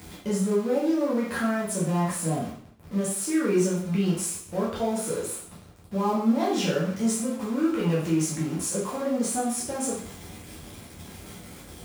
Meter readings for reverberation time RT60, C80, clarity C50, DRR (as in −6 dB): 0.55 s, 8.5 dB, 3.5 dB, −7.5 dB